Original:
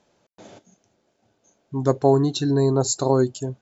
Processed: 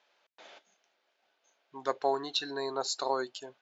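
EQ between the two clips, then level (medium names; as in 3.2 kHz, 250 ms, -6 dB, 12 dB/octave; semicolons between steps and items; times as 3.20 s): band-pass 470–3900 Hz; distance through air 100 m; tilt shelf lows -10 dB; -3.5 dB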